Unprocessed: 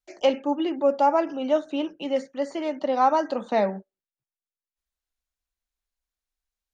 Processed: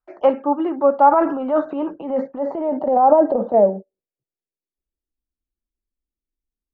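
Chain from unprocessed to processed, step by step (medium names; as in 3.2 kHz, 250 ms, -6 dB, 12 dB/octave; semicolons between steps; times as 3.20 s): 1.11–3.54 s: transient shaper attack -7 dB, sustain +8 dB; low-pass sweep 1.2 kHz -> 310 Hz, 1.62–5.21 s; trim +3.5 dB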